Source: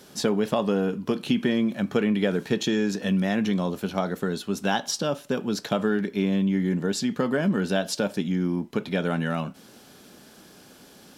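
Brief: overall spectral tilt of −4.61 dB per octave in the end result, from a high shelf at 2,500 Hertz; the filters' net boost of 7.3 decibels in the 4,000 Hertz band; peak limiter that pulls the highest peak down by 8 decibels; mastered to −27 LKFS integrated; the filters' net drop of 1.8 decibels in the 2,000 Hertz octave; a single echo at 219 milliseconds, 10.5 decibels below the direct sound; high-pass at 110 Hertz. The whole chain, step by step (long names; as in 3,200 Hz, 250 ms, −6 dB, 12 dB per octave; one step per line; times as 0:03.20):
high-pass filter 110 Hz
parametric band 2,000 Hz −6.5 dB
high-shelf EQ 2,500 Hz +5.5 dB
parametric band 4,000 Hz +6.5 dB
brickwall limiter −15.5 dBFS
single-tap delay 219 ms −10.5 dB
level −1 dB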